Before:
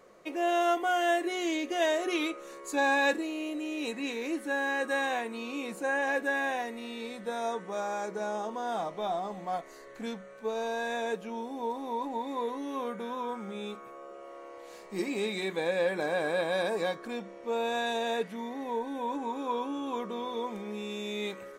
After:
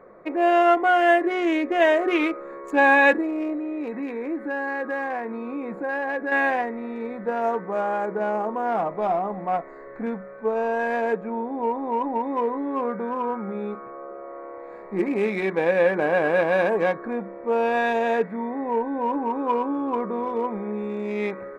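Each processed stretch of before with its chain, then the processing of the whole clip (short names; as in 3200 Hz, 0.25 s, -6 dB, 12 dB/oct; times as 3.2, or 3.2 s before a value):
3.53–6.32 compressor 2:1, threshold -36 dBFS + decimation joined by straight lines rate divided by 2×
whole clip: Wiener smoothing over 15 samples; resonant high shelf 3300 Hz -12 dB, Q 1.5; gain +9 dB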